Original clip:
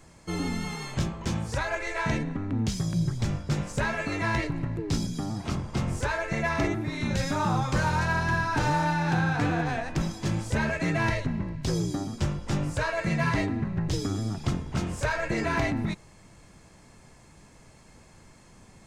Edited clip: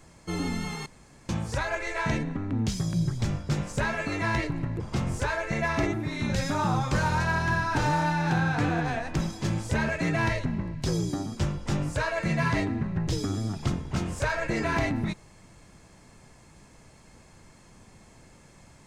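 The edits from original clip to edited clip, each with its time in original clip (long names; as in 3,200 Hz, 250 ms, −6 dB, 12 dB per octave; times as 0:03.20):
0:00.86–0:01.29: fill with room tone
0:04.80–0:05.61: remove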